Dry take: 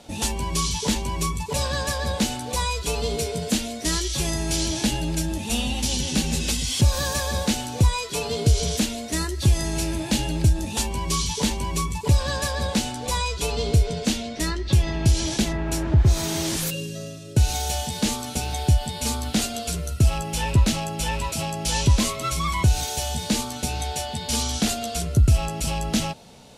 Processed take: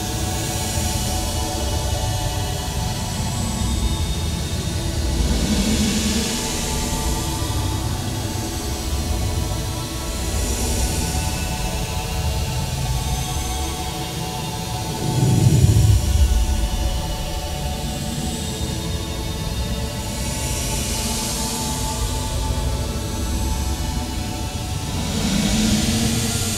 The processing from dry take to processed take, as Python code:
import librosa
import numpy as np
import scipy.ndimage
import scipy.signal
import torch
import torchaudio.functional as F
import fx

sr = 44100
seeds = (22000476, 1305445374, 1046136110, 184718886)

y = fx.echo_diffused(x, sr, ms=1982, feedback_pct=72, wet_db=-5.5)
y = fx.paulstretch(y, sr, seeds[0], factor=15.0, window_s=0.1, from_s=17.66)